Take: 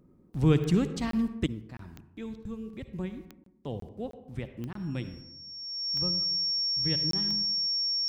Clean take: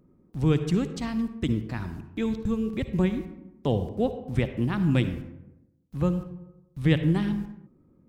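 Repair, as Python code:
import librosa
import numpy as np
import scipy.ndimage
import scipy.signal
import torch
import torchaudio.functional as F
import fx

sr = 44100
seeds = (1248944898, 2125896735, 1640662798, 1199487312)

y = fx.fix_declick_ar(x, sr, threshold=10.0)
y = fx.notch(y, sr, hz=5500.0, q=30.0)
y = fx.fix_interpolate(y, sr, at_s=(1.11, 1.77, 3.44, 3.8, 4.11, 4.73, 7.11), length_ms=23.0)
y = fx.gain(y, sr, db=fx.steps((0.0, 0.0), (1.46, 11.5)))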